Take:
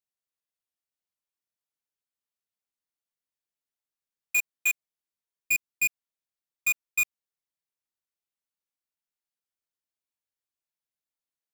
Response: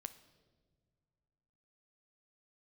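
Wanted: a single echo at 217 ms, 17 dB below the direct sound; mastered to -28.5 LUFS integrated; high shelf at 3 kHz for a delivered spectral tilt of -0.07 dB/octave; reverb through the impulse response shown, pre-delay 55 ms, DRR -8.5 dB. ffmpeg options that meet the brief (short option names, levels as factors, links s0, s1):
-filter_complex "[0:a]highshelf=f=3000:g=-9,aecho=1:1:217:0.141,asplit=2[s0][s1];[1:a]atrim=start_sample=2205,adelay=55[s2];[s1][s2]afir=irnorm=-1:irlink=0,volume=4.47[s3];[s0][s3]amix=inputs=2:normalize=0,volume=0.473"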